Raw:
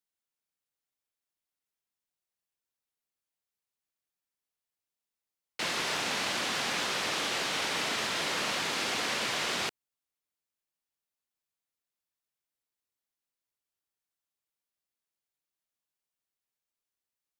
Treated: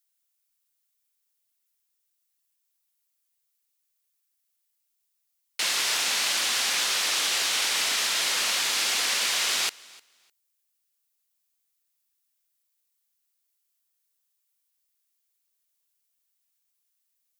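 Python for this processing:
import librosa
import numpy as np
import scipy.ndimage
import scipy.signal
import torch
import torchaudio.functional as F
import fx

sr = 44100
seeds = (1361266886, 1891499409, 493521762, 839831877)

y = fx.tilt_eq(x, sr, slope=4.0)
y = fx.echo_feedback(y, sr, ms=303, feedback_pct=18, wet_db=-23.5)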